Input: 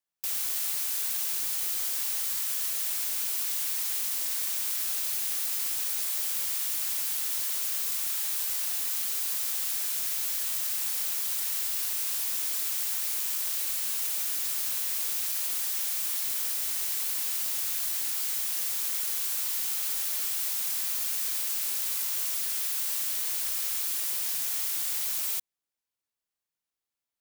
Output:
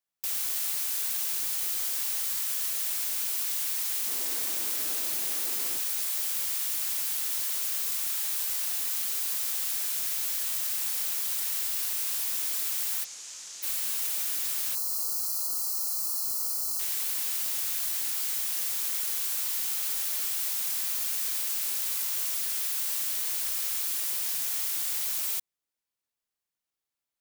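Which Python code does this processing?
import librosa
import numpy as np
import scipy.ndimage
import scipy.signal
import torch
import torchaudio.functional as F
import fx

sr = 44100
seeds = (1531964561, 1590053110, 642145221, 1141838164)

y = fx.peak_eq(x, sr, hz=320.0, db=13.0, octaves=2.1, at=(4.06, 5.78))
y = fx.ladder_lowpass(y, sr, hz=7500.0, resonance_pct=55, at=(13.03, 13.62), fade=0.02)
y = fx.spec_erase(y, sr, start_s=14.75, length_s=2.04, low_hz=1400.0, high_hz=4000.0)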